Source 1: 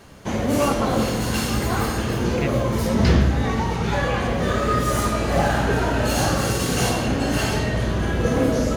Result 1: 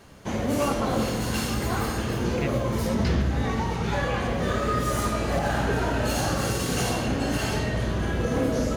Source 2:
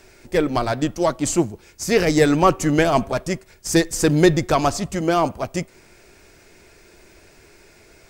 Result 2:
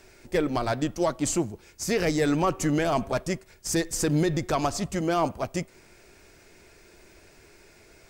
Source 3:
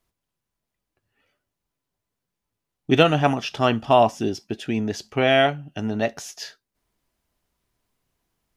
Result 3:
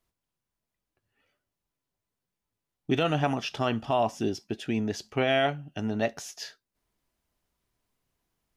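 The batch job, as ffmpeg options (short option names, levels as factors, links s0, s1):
-af "alimiter=limit=0.299:level=0:latency=1:release=95,volume=0.631"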